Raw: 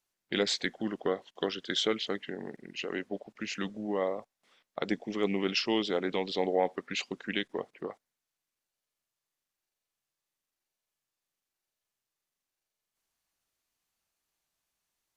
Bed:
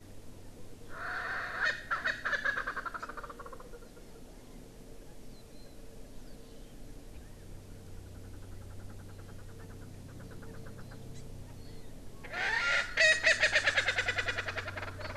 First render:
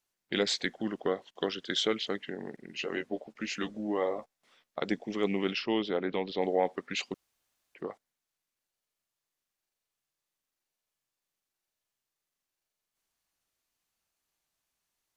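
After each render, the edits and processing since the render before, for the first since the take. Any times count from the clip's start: 2.68–4.8 doubler 13 ms -6 dB; 5.53–6.42 air absorption 190 m; 7.14–7.75 room tone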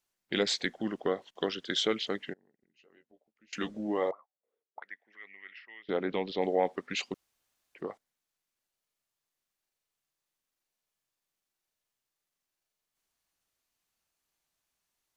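2.33–3.53 flipped gate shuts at -40 dBFS, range -29 dB; 4.11–5.89 auto-wah 390–1900 Hz, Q 11, up, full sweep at -30.5 dBFS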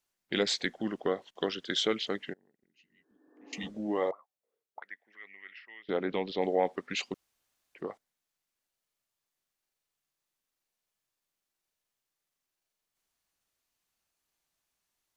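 2.79–3.64 spectral repair 240–1800 Hz both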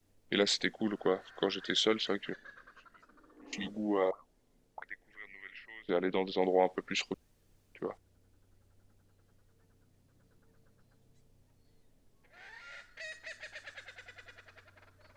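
add bed -20.5 dB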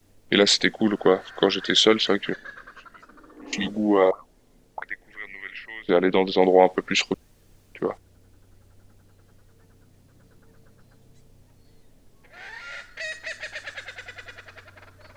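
gain +12 dB; limiter -3 dBFS, peak gain reduction 1.5 dB

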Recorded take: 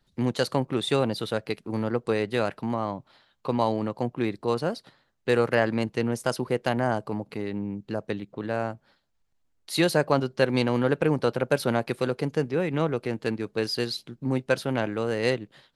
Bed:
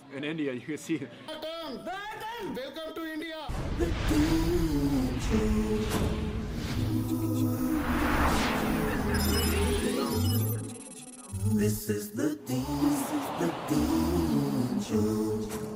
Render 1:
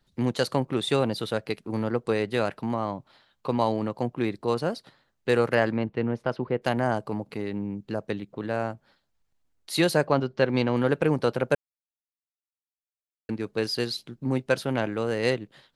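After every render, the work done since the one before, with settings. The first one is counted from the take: 5.72–6.62 air absorption 350 m; 10.07–10.77 air absorption 110 m; 11.55–13.29 mute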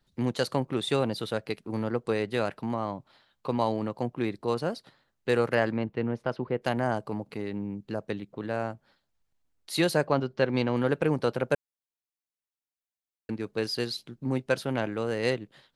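gain -2.5 dB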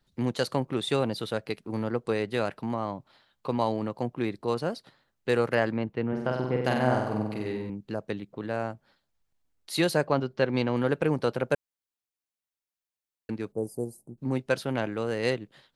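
6.08–7.7 flutter echo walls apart 8.1 m, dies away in 0.87 s; 13.52–14.18 elliptic band-stop 780–8300 Hz, stop band 60 dB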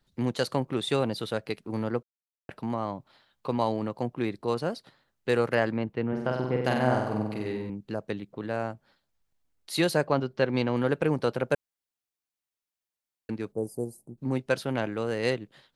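2.03–2.49 mute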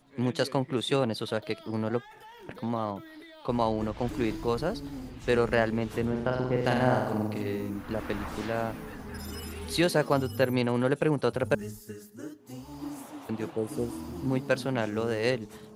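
add bed -12 dB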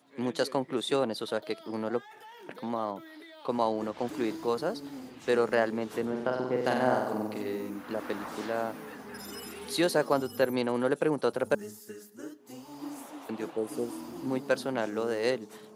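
HPF 250 Hz 12 dB/oct; dynamic EQ 2500 Hz, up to -5 dB, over -48 dBFS, Q 1.6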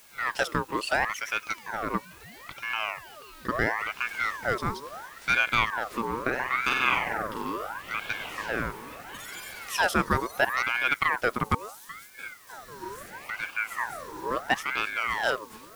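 in parallel at -4 dB: requantised 8-bit, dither triangular; on the sum: ring modulator with a swept carrier 1300 Hz, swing 50%, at 0.74 Hz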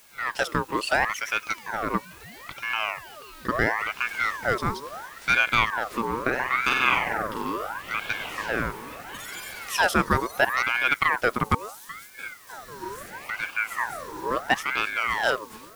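AGC gain up to 3 dB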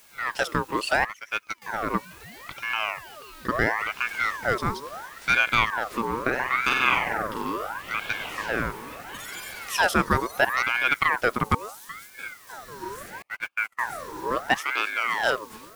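1.04–1.62 upward expander 2.5:1, over -35 dBFS; 13.22–13.87 gate -31 dBFS, range -38 dB; 14.57–15.18 HPF 360 Hz -> 170 Hz 24 dB/oct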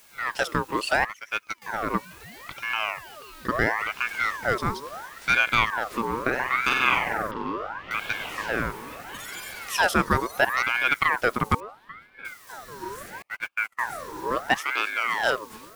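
7.31–7.91 air absorption 220 m; 11.6–12.25 air absorption 430 m

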